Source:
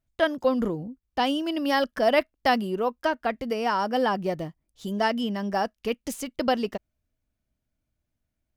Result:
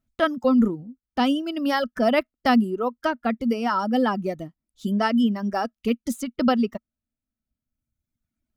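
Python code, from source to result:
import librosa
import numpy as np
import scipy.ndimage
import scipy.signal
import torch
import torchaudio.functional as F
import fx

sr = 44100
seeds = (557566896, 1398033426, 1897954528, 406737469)

y = fx.dereverb_blind(x, sr, rt60_s=1.5)
y = fx.small_body(y, sr, hz=(230.0, 1300.0), ring_ms=50, db=12)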